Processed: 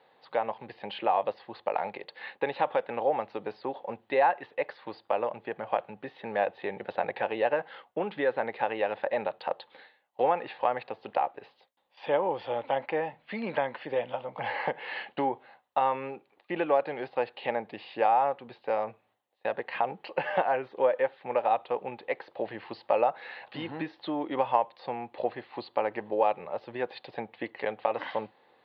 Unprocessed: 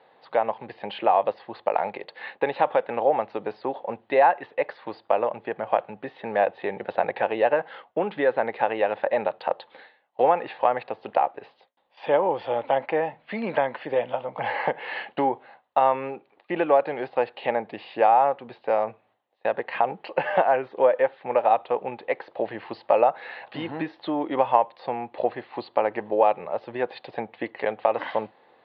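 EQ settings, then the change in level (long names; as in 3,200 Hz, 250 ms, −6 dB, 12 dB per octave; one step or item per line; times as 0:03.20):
low-shelf EQ 200 Hz +3 dB
high-shelf EQ 3,300 Hz +7.5 dB
notch filter 660 Hz, Q 19
−6.0 dB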